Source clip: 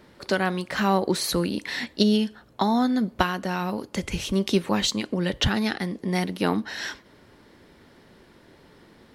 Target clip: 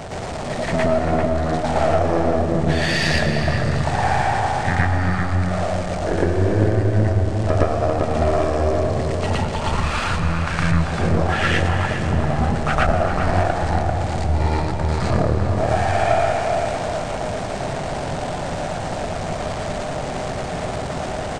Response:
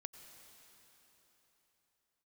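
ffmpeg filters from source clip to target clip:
-filter_complex "[0:a]aeval=exprs='val(0)+0.5*0.0376*sgn(val(0))':c=same,equalizer=f=1.5k:w=2.2:g=11.5,acompressor=threshold=-21dB:ratio=3,asplit=2[a][b];[b]adelay=168,lowpass=f=2.9k:p=1,volume=-3dB,asplit=2[c][d];[d]adelay=168,lowpass=f=2.9k:p=1,volume=0.47,asplit=2[e][f];[f]adelay=168,lowpass=f=2.9k:p=1,volume=0.47,asplit=2[g][h];[h]adelay=168,lowpass=f=2.9k:p=1,volume=0.47,asplit=2[i][j];[j]adelay=168,lowpass=f=2.9k:p=1,volume=0.47,asplit=2[k][l];[l]adelay=168,lowpass=f=2.9k:p=1,volume=0.47[m];[a][c][e][g][i][k][m]amix=inputs=7:normalize=0,asetrate=18846,aresample=44100,aeval=exprs='0.398*(cos(1*acos(clip(val(0)/0.398,-1,1)))-cos(1*PI/2))+0.1*(cos(2*acos(clip(val(0)/0.398,-1,1)))-cos(2*PI/2))+0.02*(cos(6*acos(clip(val(0)/0.398,-1,1)))-cos(6*PI/2))':c=same,asplit=2[n][o];[1:a]atrim=start_sample=2205,adelay=114[p];[o][p]afir=irnorm=-1:irlink=0,volume=8.5dB[q];[n][q]amix=inputs=2:normalize=0,volume=-1.5dB"

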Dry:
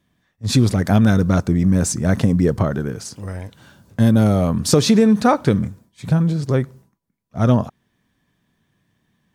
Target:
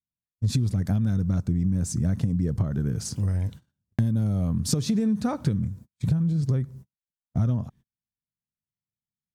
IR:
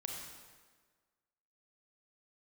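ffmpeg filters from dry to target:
-af "agate=range=-40dB:threshold=-41dB:ratio=16:detection=peak,bass=f=250:g=15,treble=f=4k:g=5,acompressor=threshold=-17dB:ratio=8,volume=-4.5dB"

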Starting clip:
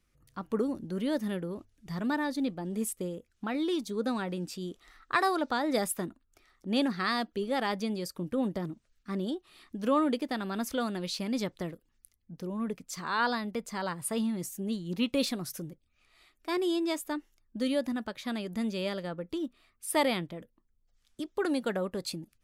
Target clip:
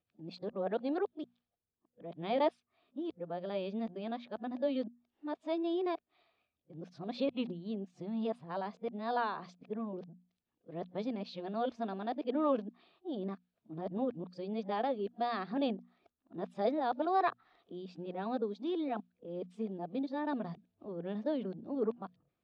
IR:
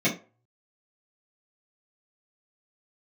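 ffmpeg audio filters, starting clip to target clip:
-af "areverse,highpass=130,equalizer=f=450:t=q:w=4:g=3,equalizer=f=700:t=q:w=4:g=9,equalizer=f=1.4k:t=q:w=4:g=-5,equalizer=f=2k:t=q:w=4:g=-9,equalizer=f=2.9k:t=q:w=4:g=-4,lowpass=f=3.5k:w=0.5412,lowpass=f=3.5k:w=1.3066,bandreject=f=60:t=h:w=6,bandreject=f=120:t=h:w=6,bandreject=f=180:t=h:w=6,bandreject=f=240:t=h:w=6,volume=-5.5dB"

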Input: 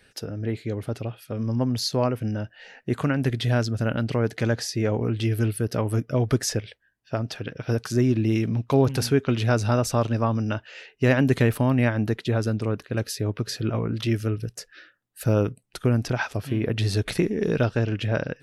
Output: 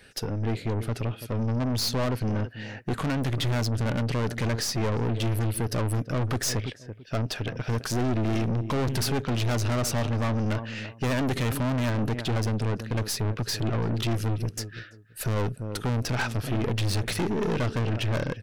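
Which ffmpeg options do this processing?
-filter_complex "[0:a]acontrast=53,asplit=2[a][b];[b]adelay=334,lowpass=f=1.1k:p=1,volume=-16.5dB,asplit=2[c][d];[d]adelay=334,lowpass=f=1.1k:p=1,volume=0.2[e];[a][c][e]amix=inputs=3:normalize=0,aeval=exprs='(tanh(15.8*val(0)+0.45)-tanh(0.45))/15.8':c=same"

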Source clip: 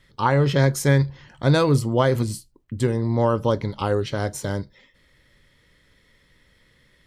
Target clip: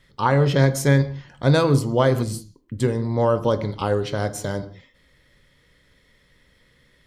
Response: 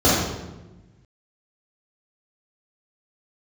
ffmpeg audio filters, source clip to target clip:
-filter_complex "[0:a]asplit=2[a][b];[1:a]atrim=start_sample=2205,afade=t=out:st=0.24:d=0.01,atrim=end_sample=11025,lowshelf=f=190:g=-9.5[c];[b][c]afir=irnorm=-1:irlink=0,volume=-34dB[d];[a][d]amix=inputs=2:normalize=0"

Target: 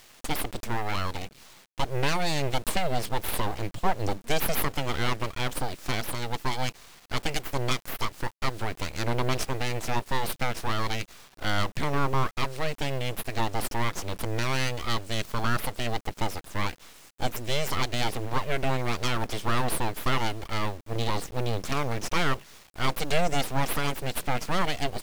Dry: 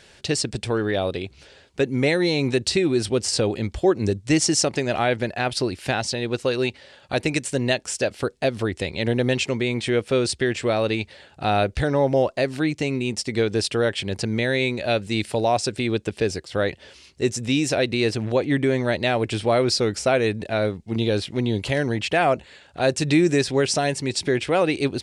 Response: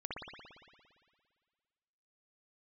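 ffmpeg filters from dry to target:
-af "aeval=exprs='abs(val(0))':c=same,acrusher=bits=5:dc=4:mix=0:aa=0.000001,volume=-3dB"

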